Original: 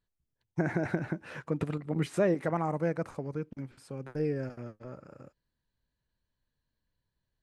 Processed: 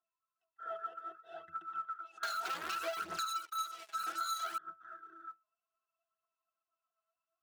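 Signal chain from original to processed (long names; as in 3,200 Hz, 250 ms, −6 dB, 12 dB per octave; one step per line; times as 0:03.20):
neighbouring bands swapped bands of 1,000 Hz
chorus effect 2.4 Hz, delay 19.5 ms, depth 8 ms
volume swells 235 ms
treble cut that deepens with the level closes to 800 Hz, closed at −31.5 dBFS
resonances in every octave E, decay 0.2 s
0:02.23–0:04.58: leveller curve on the samples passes 5
high-pass filter 590 Hz 12 dB per octave
high-shelf EQ 3,900 Hz +9.5 dB
phase shifter 0.64 Hz, delay 4.9 ms, feedback 56%
downward compressor 6 to 1, threshold −50 dBFS, peak gain reduction 14 dB
level +15 dB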